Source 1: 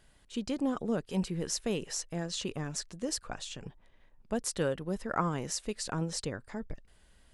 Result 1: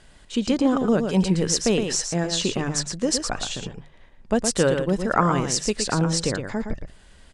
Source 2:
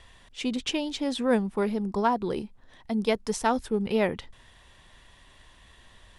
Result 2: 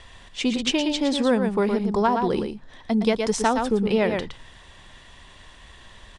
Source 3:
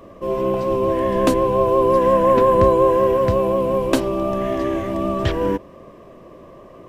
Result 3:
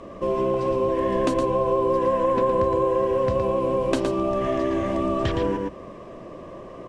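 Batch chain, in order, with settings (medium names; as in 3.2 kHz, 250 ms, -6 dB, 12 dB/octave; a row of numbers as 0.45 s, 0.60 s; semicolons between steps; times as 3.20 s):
delay 115 ms -7 dB; compression 3:1, threshold -24 dBFS; low-pass 9.1 kHz 24 dB/octave; hum notches 50/100/150 Hz; normalise loudness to -23 LUFS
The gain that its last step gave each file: +11.5 dB, +7.0 dB, +2.5 dB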